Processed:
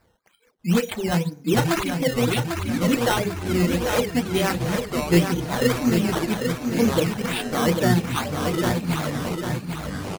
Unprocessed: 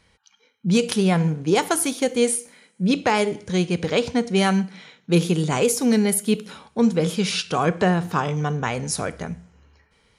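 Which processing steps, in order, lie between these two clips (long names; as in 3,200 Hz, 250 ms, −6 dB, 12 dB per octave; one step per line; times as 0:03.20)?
on a send at −3 dB: convolution reverb RT60 0.50 s, pre-delay 3 ms
on the sum: sample-and-hold swept by an LFO 13×, swing 100% 2 Hz
reverb reduction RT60 1.8 s
delay with pitch and tempo change per echo 594 ms, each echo −6 semitones, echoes 3, each echo −6 dB
repeating echo 797 ms, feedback 45%, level −6 dB
level −3 dB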